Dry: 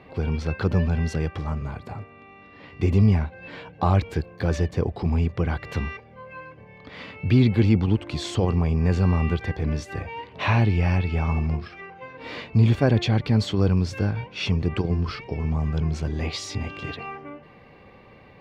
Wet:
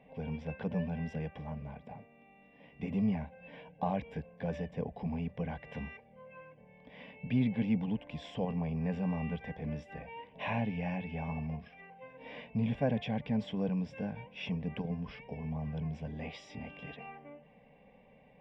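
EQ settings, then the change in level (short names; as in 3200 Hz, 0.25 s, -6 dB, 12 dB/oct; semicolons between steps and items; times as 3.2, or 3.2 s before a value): dynamic EQ 1400 Hz, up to +6 dB, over -47 dBFS, Q 1.6; polynomial smoothing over 25 samples; fixed phaser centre 350 Hz, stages 6; -8.0 dB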